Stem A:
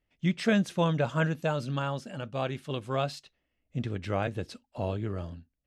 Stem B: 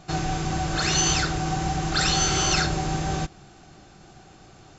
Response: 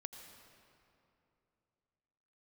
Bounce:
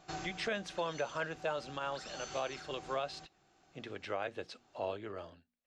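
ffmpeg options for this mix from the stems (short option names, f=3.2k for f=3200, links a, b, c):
-filter_complex "[0:a]acrossover=split=370 7000:gain=0.112 1 0.0794[a][b][c];[a][b][c]amix=inputs=3:normalize=0,bandreject=f=60:t=h:w=6,bandreject=f=120:t=h:w=6,bandreject=f=180:t=h:w=6,bandreject=f=240:t=h:w=6,volume=-2dB,asplit=2[d][e];[1:a]bass=f=250:g=-10,treble=f=4k:g=-2,acompressor=threshold=-30dB:ratio=2,volume=-9.5dB[f];[e]apad=whole_len=211125[g];[f][g]sidechaincompress=threshold=-42dB:ratio=5:attack=16:release=1030[h];[d][h]amix=inputs=2:normalize=0,alimiter=level_in=1.5dB:limit=-24dB:level=0:latency=1:release=131,volume=-1.5dB"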